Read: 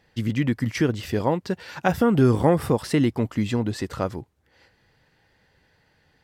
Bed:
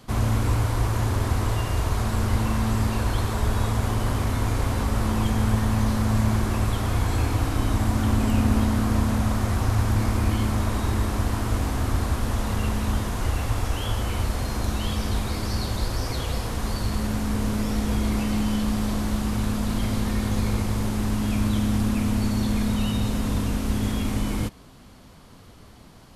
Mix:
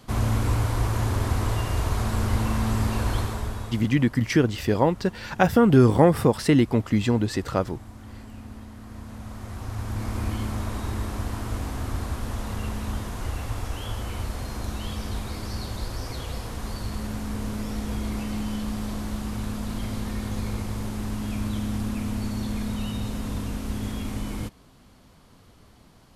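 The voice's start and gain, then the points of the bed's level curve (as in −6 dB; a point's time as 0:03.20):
3.55 s, +2.0 dB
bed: 0:03.17 −1 dB
0:04.14 −20.5 dB
0:08.76 −20.5 dB
0:10.20 −5.5 dB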